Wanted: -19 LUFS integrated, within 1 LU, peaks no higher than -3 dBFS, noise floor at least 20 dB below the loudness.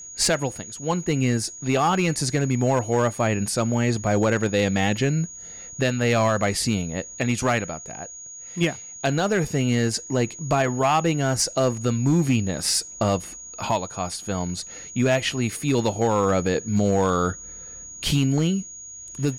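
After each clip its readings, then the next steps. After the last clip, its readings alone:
clipped 0.8%; flat tops at -13.5 dBFS; steady tone 6700 Hz; tone level -37 dBFS; loudness -23.0 LUFS; peak -13.5 dBFS; loudness target -19.0 LUFS
-> clip repair -13.5 dBFS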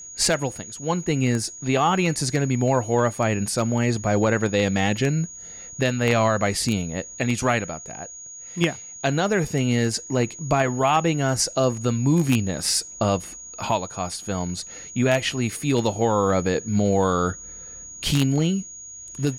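clipped 0.0%; steady tone 6700 Hz; tone level -37 dBFS
-> notch 6700 Hz, Q 30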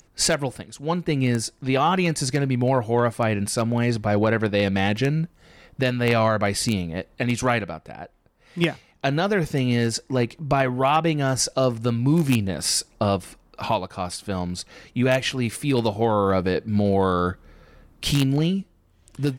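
steady tone none; loudness -23.0 LUFS; peak -4.5 dBFS; loudness target -19.0 LUFS
-> gain +4 dB; limiter -3 dBFS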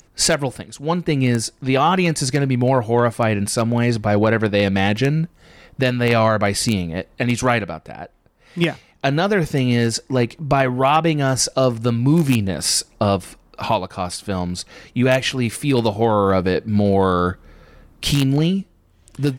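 loudness -19.0 LUFS; peak -3.0 dBFS; noise floor -55 dBFS

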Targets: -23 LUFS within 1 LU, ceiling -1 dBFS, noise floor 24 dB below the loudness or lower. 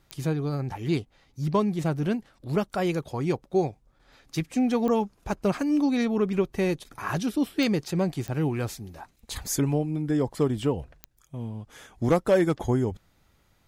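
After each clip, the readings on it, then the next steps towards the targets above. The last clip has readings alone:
clicks 5; loudness -27.0 LUFS; peak -12.0 dBFS; loudness target -23.0 LUFS
-> de-click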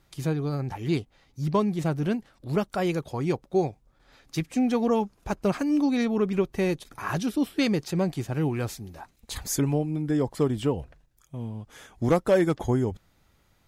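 clicks 0; loudness -27.0 LUFS; peak -12.0 dBFS; loudness target -23.0 LUFS
-> gain +4 dB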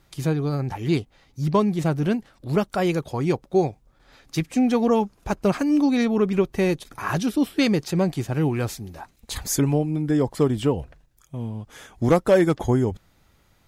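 loudness -23.0 LUFS; peak -8.0 dBFS; noise floor -61 dBFS

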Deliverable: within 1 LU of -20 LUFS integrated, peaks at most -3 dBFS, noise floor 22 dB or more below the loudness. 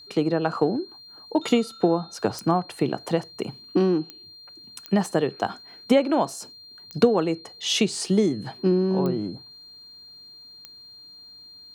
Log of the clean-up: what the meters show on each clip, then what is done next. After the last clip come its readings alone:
clicks 6; steady tone 4200 Hz; tone level -44 dBFS; loudness -24.5 LUFS; peak -5.0 dBFS; loudness target -20.0 LUFS
-> de-click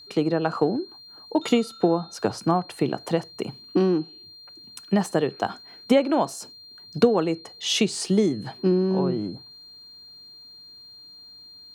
clicks 0; steady tone 4200 Hz; tone level -44 dBFS
-> notch 4200 Hz, Q 30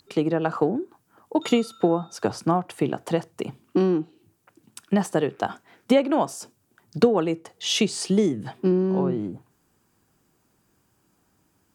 steady tone none; loudness -24.5 LUFS; peak -5.0 dBFS; loudness target -20.0 LUFS
-> gain +4.5 dB; limiter -3 dBFS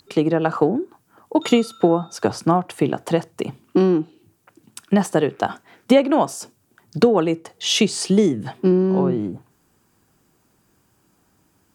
loudness -20.0 LUFS; peak -3.0 dBFS; noise floor -63 dBFS

